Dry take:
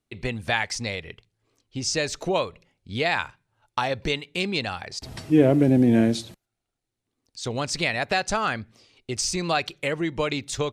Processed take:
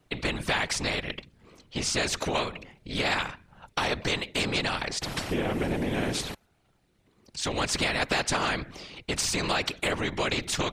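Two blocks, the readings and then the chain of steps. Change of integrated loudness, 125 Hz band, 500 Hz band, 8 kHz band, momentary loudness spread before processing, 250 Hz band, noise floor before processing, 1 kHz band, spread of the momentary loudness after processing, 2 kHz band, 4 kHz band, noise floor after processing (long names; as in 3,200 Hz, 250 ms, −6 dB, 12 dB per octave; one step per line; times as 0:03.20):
−3.5 dB, −6.0 dB, −5.5 dB, 0.0 dB, 16 LU, −9.0 dB, −83 dBFS, −2.5 dB, 11 LU, −1.0 dB, +1.0 dB, −68 dBFS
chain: bass and treble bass +1 dB, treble −9 dB
downward compressor, threshold −21 dBFS, peak gain reduction 10 dB
random phases in short frames
every bin compressed towards the loudest bin 2 to 1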